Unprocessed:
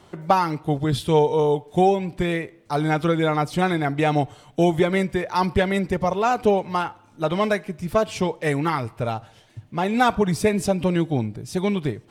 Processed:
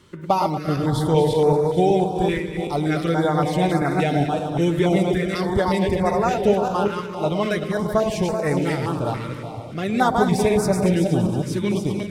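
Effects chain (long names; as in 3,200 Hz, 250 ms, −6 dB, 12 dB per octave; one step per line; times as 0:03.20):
feedback delay that plays each chunk backwards 191 ms, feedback 48%, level −3.5 dB
delay that swaps between a low-pass and a high-pass 116 ms, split 850 Hz, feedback 78%, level −9 dB
notch on a step sequencer 3.5 Hz 730–3,100 Hz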